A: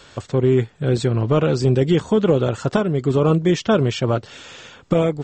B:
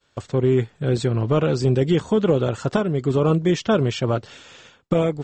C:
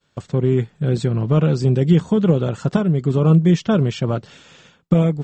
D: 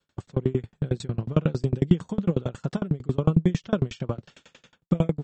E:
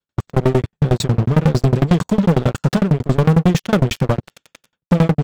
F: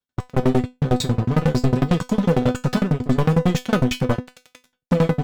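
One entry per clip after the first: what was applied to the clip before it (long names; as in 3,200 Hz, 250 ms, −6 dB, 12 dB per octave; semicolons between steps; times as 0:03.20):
downward expander −35 dBFS; level −2 dB
parametric band 170 Hz +11 dB 0.76 octaves; level −2 dB
tremolo with a ramp in dB decaying 11 Hz, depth 32 dB
leveller curve on the samples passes 5; level −1.5 dB
tuned comb filter 250 Hz, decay 0.2 s, harmonics all, mix 80%; level +6.5 dB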